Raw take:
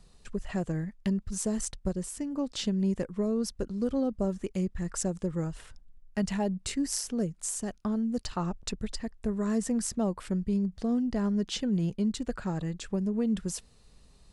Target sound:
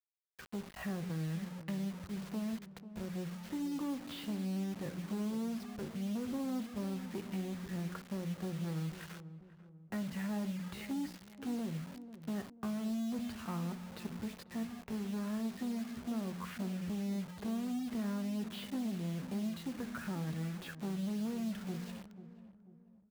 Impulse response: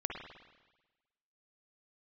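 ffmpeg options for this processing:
-filter_complex "[0:a]bandreject=f=60:t=h:w=6,bandreject=f=120:t=h:w=6,bandreject=f=180:t=h:w=6,bandreject=f=240:t=h:w=6,bandreject=f=300:t=h:w=6,asplit=2[a][b];[b]adelay=13,volume=-13.5dB[c];[a][c]amix=inputs=2:normalize=0,acrossover=split=290|1300[d][e][f];[d]acompressor=threshold=-32dB:ratio=4[g];[e]acompressor=threshold=-47dB:ratio=4[h];[f]acompressor=threshold=-37dB:ratio=4[i];[g][h][i]amix=inputs=3:normalize=0,agate=range=-33dB:threshold=-50dB:ratio=3:detection=peak,acompressor=threshold=-38dB:ratio=5,atempo=0.62,aresample=11025,asoftclip=type=tanh:threshold=-39dB,aresample=44100,highpass=110,lowpass=2.2k,asplit=2[j][k];[1:a]atrim=start_sample=2205,afade=t=out:st=0.15:d=0.01,atrim=end_sample=7056[l];[k][l]afir=irnorm=-1:irlink=0,volume=-8.5dB[m];[j][m]amix=inputs=2:normalize=0,acrusher=bits=8:mix=0:aa=0.000001,asplit=2[n][o];[o]adelay=491,lowpass=f=900:p=1,volume=-12.5dB,asplit=2[p][q];[q]adelay=491,lowpass=f=900:p=1,volume=0.45,asplit=2[r][s];[s]adelay=491,lowpass=f=900:p=1,volume=0.45,asplit=2[t][u];[u]adelay=491,lowpass=f=900:p=1,volume=0.45[v];[n][p][r][t][v]amix=inputs=5:normalize=0,volume=3.5dB"

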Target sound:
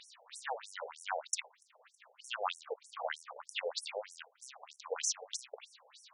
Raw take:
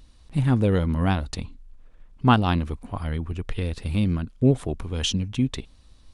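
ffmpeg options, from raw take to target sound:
-filter_complex "[0:a]acrossover=split=130[a][b];[a]aeval=exprs='(tanh(126*val(0)+0.75)-tanh(0.75))/126':c=same[c];[b]acompressor=threshold=-36dB:ratio=6[d];[c][d]amix=inputs=2:normalize=0,acrusher=bits=6:mode=log:mix=0:aa=0.000001,afftfilt=real='re*between(b*sr/1024,590*pow(7900/590,0.5+0.5*sin(2*PI*3.2*pts/sr))/1.41,590*pow(7900/590,0.5+0.5*sin(2*PI*3.2*pts/sr))*1.41)':imag='im*between(b*sr/1024,590*pow(7900/590,0.5+0.5*sin(2*PI*3.2*pts/sr))/1.41,590*pow(7900/590,0.5+0.5*sin(2*PI*3.2*pts/sr))*1.41)':win_size=1024:overlap=0.75,volume=12.5dB"

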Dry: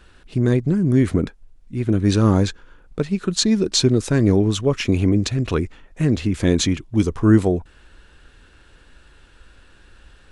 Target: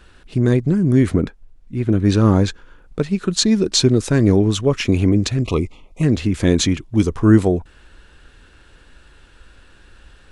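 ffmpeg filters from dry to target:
-filter_complex "[0:a]asettb=1/sr,asplit=3[a][b][c];[a]atrim=end=1.124[d];[b]atrim=start=1.12:end=2.48,asetpts=PTS-STARTPTS,afade=t=in:d=0.004:c=qsin,afade=t=out:st=1.356:d=0.004:c=qsin,highshelf=f=4.9k:g=-6.5[e];[c]atrim=start=2.476[f];[d][e]acrossfade=d=0.004:c1=hsin:c2=qsin[g];[g][f]acrossfade=d=0.004:c1=qsin:c2=hsin,asettb=1/sr,asplit=3[h][i][j];[h]atrim=end=5.424[k];[i]atrim=start=5.42:end=6.03,asetpts=PTS-STARTPTS,afade=t=in:d=0.004:c=qsin,afade=t=out:st=0.606:d=0.004:c=qsin,asuperstop=centerf=1600:order=20:qfactor=2.2[l];[j]atrim=start=6.026[m];[k][l]acrossfade=d=0.004:c1=hsin:c2=qsin[n];[n][m]acrossfade=d=0.004:c1=qsin:c2=hsin,volume=2dB"

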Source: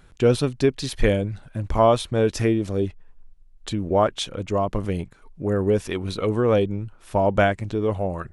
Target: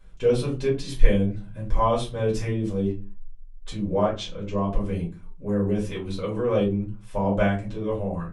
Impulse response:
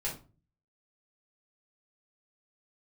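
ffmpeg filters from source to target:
-filter_complex "[0:a]asettb=1/sr,asplit=3[a][b][c];[a]atrim=end=4.064[d];[b]atrim=start=4.06:end=4.64,asetpts=PTS-STARTPTS,afade=t=in:d=0.004:c=qsin,afade=t=out:st=0.576:d=0.004:c=qsin,lowpass=f=7k:w=0.5412,lowpass=f=7k:w=1.3066[e];[c]atrim=start=4.636[f];[d][e]acrossfade=d=0.004:c1=hsin:c2=qsin[g];[g][f]acrossfade=d=0.004:c1=qsin:c2=hsin[h];[1:a]atrim=start_sample=2205,afade=t=out:st=0.44:d=0.01,atrim=end_sample=19845,asetrate=52920,aresample=44100[i];[h][i]afir=irnorm=-1:irlink=0,volume=-6.5dB"

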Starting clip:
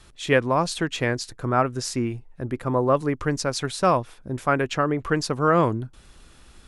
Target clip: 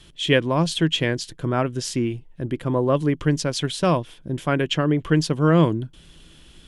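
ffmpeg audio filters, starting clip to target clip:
-af "equalizer=f=160:t=o:w=0.33:g=10,equalizer=f=315:t=o:w=0.33:g=6,equalizer=f=800:t=o:w=0.33:g=-5,equalizer=f=1.25k:t=o:w=0.33:g=-7,equalizer=f=3.15k:t=o:w=0.33:g=12"

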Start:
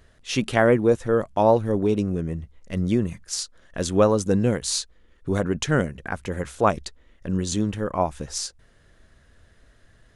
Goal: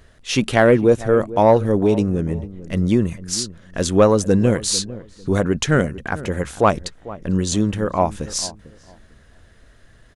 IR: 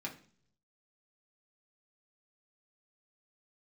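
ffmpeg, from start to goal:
-filter_complex "[0:a]acontrast=33,asplit=2[a][b];[b]adelay=448,lowpass=f=880:p=1,volume=-15.5dB,asplit=2[c][d];[d]adelay=448,lowpass=f=880:p=1,volume=0.25,asplit=2[e][f];[f]adelay=448,lowpass=f=880:p=1,volume=0.25[g];[a][c][e][g]amix=inputs=4:normalize=0"

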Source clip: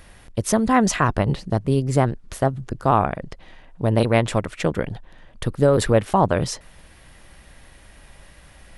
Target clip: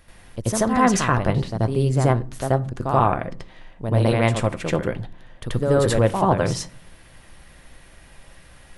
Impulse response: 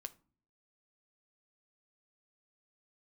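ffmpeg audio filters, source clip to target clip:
-filter_complex "[0:a]asplit=2[a][b];[1:a]atrim=start_sample=2205,adelay=83[c];[b][c]afir=irnorm=-1:irlink=0,volume=11dB[d];[a][d]amix=inputs=2:normalize=0,volume=-7.5dB"

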